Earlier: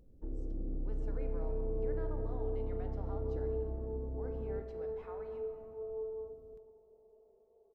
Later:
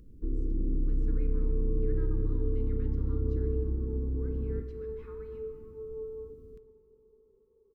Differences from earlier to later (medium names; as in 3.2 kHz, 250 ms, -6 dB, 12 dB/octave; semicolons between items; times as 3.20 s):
first sound +9.0 dB; second sound +5.0 dB; master: add Butterworth band-stop 690 Hz, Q 0.95